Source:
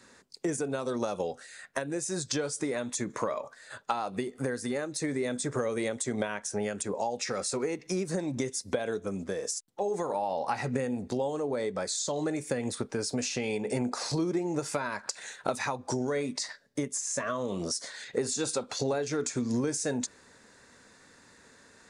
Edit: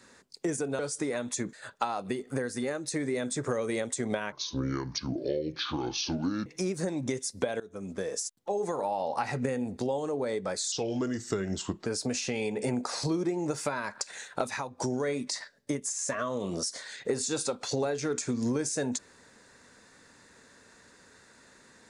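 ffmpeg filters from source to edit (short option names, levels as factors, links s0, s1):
-filter_complex "[0:a]asplit=9[s0][s1][s2][s3][s4][s5][s6][s7][s8];[s0]atrim=end=0.792[s9];[s1]atrim=start=2.398:end=3.142[s10];[s2]atrim=start=3.608:end=6.404[s11];[s3]atrim=start=6.4:end=7.77,asetpts=PTS-STARTPTS,asetrate=28224,aresample=44100[s12];[s4]atrim=start=7.766:end=8.91,asetpts=PTS-STARTPTS,afade=t=out:st=1.14:d=0.004:c=hsin:silence=0.105925[s13];[s5]atrim=start=8.91:end=12.034,asetpts=PTS-STARTPTS,afade=t=in:d=0.41:silence=0.105925[s14];[s6]atrim=start=12.03:end=12.94,asetpts=PTS-STARTPTS,asetrate=35280,aresample=44100[s15];[s7]atrim=start=12.936:end=15.86,asetpts=PTS-STARTPTS,afade=t=out:st=2.504:d=0.42:silence=0.501187[s16];[s8]atrim=start=15.86,asetpts=PTS-STARTPTS,afade=t=in:d=0.004:c=hsin:silence=0.501187[s17];[s9][s10]acrossfade=d=0.004:c1=hsin:c2=hsin[s18];[s18][s11]acrossfade=d=0.004:c1=hsin:c2=hsin[s19];[s19][s12]acrossfade=d=0.004:c1=hsin:c2=hsin[s20];[s13][s14]concat=n=2:v=0:a=1[s21];[s20][s21]acrossfade=d=0.004:c1=hsin:c2=hsin[s22];[s22][s15]acrossfade=d=0.004:c1=hsin:c2=hsin[s23];[s16][s17]concat=n=2:v=0:a=1[s24];[s23][s24]acrossfade=d=0.004:c1=hsin:c2=hsin"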